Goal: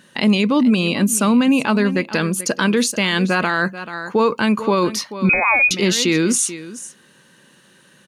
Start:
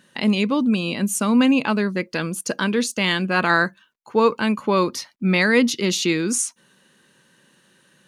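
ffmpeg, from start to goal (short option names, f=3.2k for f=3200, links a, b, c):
-filter_complex "[0:a]asplit=2[a][b];[b]aecho=0:1:435:0.141[c];[a][c]amix=inputs=2:normalize=0,alimiter=limit=-14dB:level=0:latency=1:release=40,asettb=1/sr,asplit=3[d][e][f];[d]atrim=end=5.294[g];[e]atrim=start=5.29:end=5.71,asetpts=PTS-STARTPTS,afade=t=in:d=0.004:c=qsin,afade=t=out:st=0.416:d=0.004:c=qsin,lowpass=f=2.3k:t=q:w=0.5098,lowpass=f=2.3k:t=q:w=0.6013,lowpass=f=2.3k:t=q:w=0.9,lowpass=f=2.3k:t=q:w=2.563,afreqshift=-2700[h];[f]atrim=start=5.706[i];[g][h]acrossfade=d=0.004:c1=hsin:c2=qsin[j];[j][i]acrossfade=d=0.004:c1=qsin:c2=hsin,volume=6dB"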